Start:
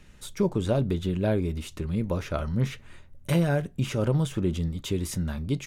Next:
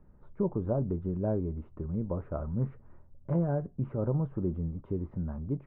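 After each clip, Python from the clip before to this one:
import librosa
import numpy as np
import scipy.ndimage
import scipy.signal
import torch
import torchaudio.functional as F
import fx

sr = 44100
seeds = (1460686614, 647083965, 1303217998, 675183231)

y = scipy.signal.sosfilt(scipy.signal.butter(4, 1100.0, 'lowpass', fs=sr, output='sos'), x)
y = y * 10.0 ** (-5.0 / 20.0)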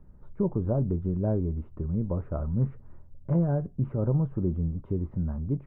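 y = fx.low_shelf(x, sr, hz=210.0, db=7.0)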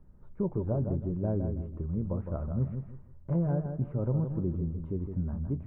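y = fx.echo_feedback(x, sr, ms=161, feedback_pct=28, wet_db=-7.0)
y = y * 10.0 ** (-4.0 / 20.0)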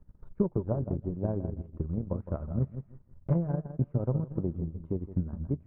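y = fx.transient(x, sr, attack_db=9, sustain_db=-11)
y = y * 10.0 ** (-3.0 / 20.0)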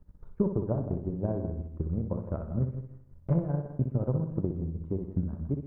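y = fx.echo_feedback(x, sr, ms=62, feedback_pct=37, wet_db=-7.0)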